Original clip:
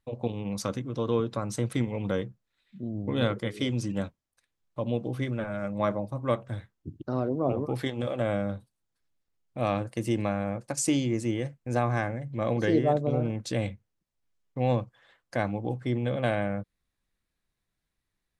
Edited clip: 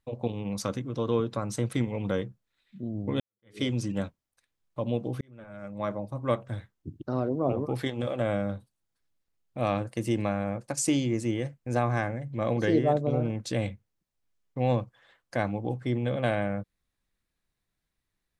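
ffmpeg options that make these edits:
-filter_complex "[0:a]asplit=3[a][b][c];[a]atrim=end=3.2,asetpts=PTS-STARTPTS,afade=t=out:st=3.196:d=0.004:c=hsin[d];[b]atrim=start=3.2:end=5.21,asetpts=PTS-STARTPTS,afade=t=in:d=0.38:c=exp,afade=t=out:st=2.006:d=0.004:c=hsin[e];[c]atrim=start=5.21,asetpts=PTS-STARTPTS,afade=t=in:d=1.09[f];[d][e][f]concat=n=3:v=0:a=1"

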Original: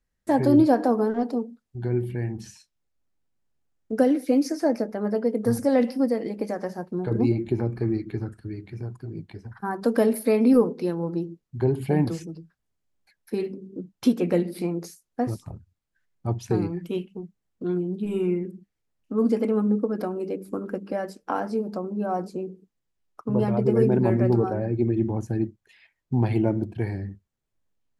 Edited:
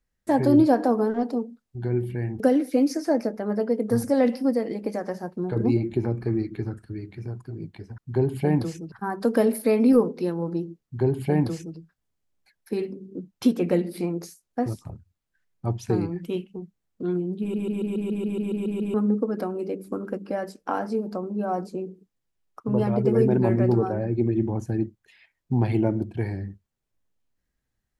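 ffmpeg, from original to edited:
-filter_complex "[0:a]asplit=15[a][b][c][d][e][f][g][h][i][j][k][l][m][n][o];[a]atrim=end=2.402[p];[b]atrim=start=3.948:end=9.532[q];[c]atrim=start=11.438:end=12.382[r];[d]atrim=start=9.528:end=18.152[s];[e]atrim=start=18.008:end=18.152[t];[f]atrim=start=18.008:end=18.152[u];[g]atrim=start=18.008:end=18.152[v];[h]atrim=start=18.008:end=18.152[w];[i]atrim=start=18.008:end=18.152[x];[j]atrim=start=18.008:end=18.152[y];[k]atrim=start=18.008:end=18.152[z];[l]atrim=start=18.008:end=18.152[aa];[m]atrim=start=18.008:end=18.152[ab];[n]atrim=start=18.008:end=18.152[ac];[o]atrim=start=19.548[ad];[p][q]acrossfade=d=0.004:c1=hsin:c2=hsin[ae];[ae][r]acrossfade=d=0.004:c1=hsin:c2=hsin[af];[af][s]acrossfade=d=0.004:c1=hsin:c2=hsin[ag];[ag][t]acrossfade=d=0.004:c1=hsin:c2=hsin[ah];[ah][u]acrossfade=d=0.004:c1=hsin:c2=hsin[ai];[ai][v]acrossfade=d=0.004:c1=hsin:c2=hsin[aj];[aj][w]acrossfade=d=0.004:c1=hsin:c2=hsin[ak];[ak][x]acrossfade=d=0.004:c1=hsin:c2=hsin[al];[al][y]acrossfade=d=0.004:c1=hsin:c2=hsin[am];[am][z]acrossfade=d=0.004:c1=hsin:c2=hsin[an];[an][aa]acrossfade=d=0.004:c1=hsin:c2=hsin[ao];[ao][ab]acrossfade=d=0.004:c1=hsin:c2=hsin[ap];[ap][ac]acrossfade=d=0.004:c1=hsin:c2=hsin[aq];[aq][ad]acrossfade=d=0.004:c1=hsin:c2=hsin"

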